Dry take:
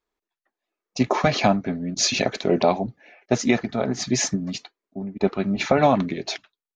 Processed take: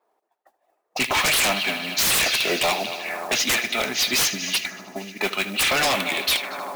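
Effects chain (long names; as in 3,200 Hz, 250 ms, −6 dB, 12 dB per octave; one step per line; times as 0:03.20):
high-pass filter 120 Hz 24 dB per octave
echo machine with several playback heads 77 ms, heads first and third, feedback 66%, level −18.5 dB
envelope filter 710–3,000 Hz, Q 2.7, up, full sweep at −26 dBFS
sine wavefolder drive 18 dB, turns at −16.5 dBFS
noise that follows the level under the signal 16 dB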